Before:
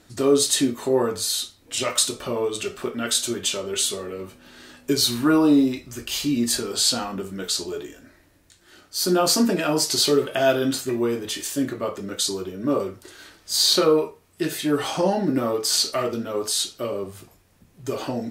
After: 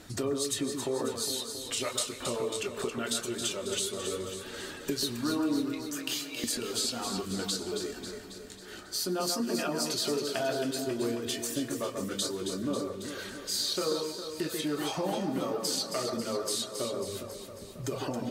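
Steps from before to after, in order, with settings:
reverb reduction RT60 0.62 s
0:05.80–0:06.44: Butterworth high-pass 510 Hz
downward compressor 3 to 1, threshold −40 dBFS, peak gain reduction 19.5 dB
delay that swaps between a low-pass and a high-pass 136 ms, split 1,800 Hz, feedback 77%, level −5 dB
convolution reverb RT60 3.6 s, pre-delay 89 ms, DRR 15.5 dB
level +4.5 dB

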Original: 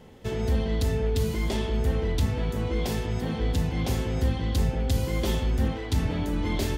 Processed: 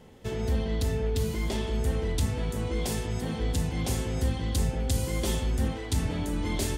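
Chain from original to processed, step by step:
parametric band 8,800 Hz +3.5 dB 1 octave, from 0:01.67 +10.5 dB
level −2.5 dB

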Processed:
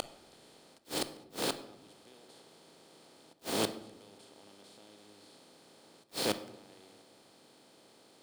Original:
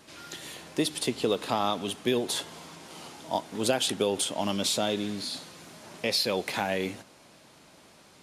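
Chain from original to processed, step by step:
compressor on every frequency bin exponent 0.2
delay that swaps between a low-pass and a high-pass 165 ms, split 880 Hz, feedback 51%, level −12 dB
volume swells 691 ms
bit-depth reduction 6 bits, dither none
gate with flip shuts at −15 dBFS, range −36 dB
on a send at −10.5 dB: convolution reverb RT60 0.85 s, pre-delay 19 ms
on the sum: level −3 dB

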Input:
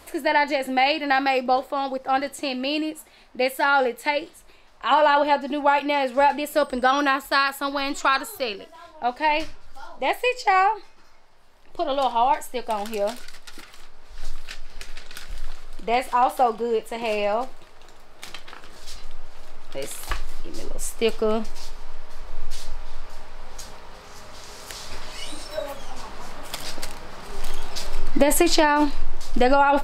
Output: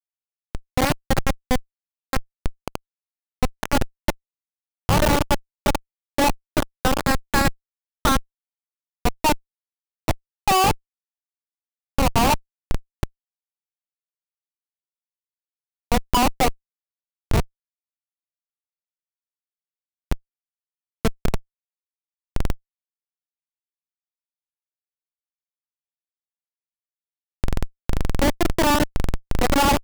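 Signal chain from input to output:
fade in at the beginning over 0.83 s
low-pass filter sweep 5,300 Hz → 1,200 Hz, 0:05.80–0:08.26
comparator with hysteresis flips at −13 dBFS
level +4.5 dB

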